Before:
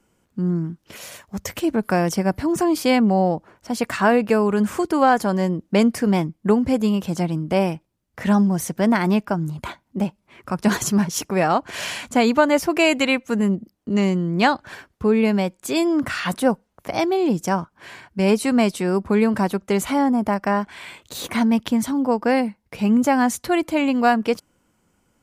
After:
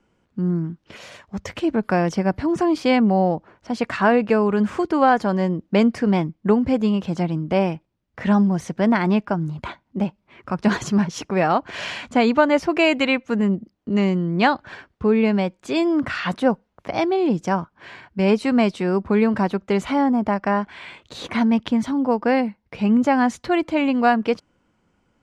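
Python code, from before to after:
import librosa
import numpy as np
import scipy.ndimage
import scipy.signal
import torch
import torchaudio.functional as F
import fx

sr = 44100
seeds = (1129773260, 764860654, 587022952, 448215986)

y = scipy.signal.sosfilt(scipy.signal.butter(2, 4200.0, 'lowpass', fs=sr, output='sos'), x)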